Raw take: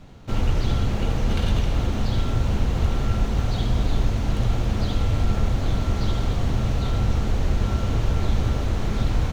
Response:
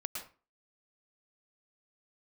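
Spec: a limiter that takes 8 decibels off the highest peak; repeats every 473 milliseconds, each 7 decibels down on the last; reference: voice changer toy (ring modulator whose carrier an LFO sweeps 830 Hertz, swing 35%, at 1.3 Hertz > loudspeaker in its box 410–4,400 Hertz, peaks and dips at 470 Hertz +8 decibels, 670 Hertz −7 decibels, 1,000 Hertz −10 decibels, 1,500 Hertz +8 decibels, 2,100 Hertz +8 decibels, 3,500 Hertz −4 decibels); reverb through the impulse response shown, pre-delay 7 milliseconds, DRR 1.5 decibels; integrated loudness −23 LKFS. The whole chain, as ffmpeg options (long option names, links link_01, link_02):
-filter_complex "[0:a]alimiter=limit=-17dB:level=0:latency=1,aecho=1:1:473|946|1419|1892|2365:0.447|0.201|0.0905|0.0407|0.0183,asplit=2[link_01][link_02];[1:a]atrim=start_sample=2205,adelay=7[link_03];[link_02][link_03]afir=irnorm=-1:irlink=0,volume=-2dB[link_04];[link_01][link_04]amix=inputs=2:normalize=0,aeval=exprs='val(0)*sin(2*PI*830*n/s+830*0.35/1.3*sin(2*PI*1.3*n/s))':channel_layout=same,highpass=410,equalizer=frequency=470:width_type=q:width=4:gain=8,equalizer=frequency=670:width_type=q:width=4:gain=-7,equalizer=frequency=1000:width_type=q:width=4:gain=-10,equalizer=frequency=1500:width_type=q:width=4:gain=8,equalizer=frequency=2100:width_type=q:width=4:gain=8,equalizer=frequency=3500:width_type=q:width=4:gain=-4,lowpass=frequency=4400:width=0.5412,lowpass=frequency=4400:width=1.3066,volume=3.5dB"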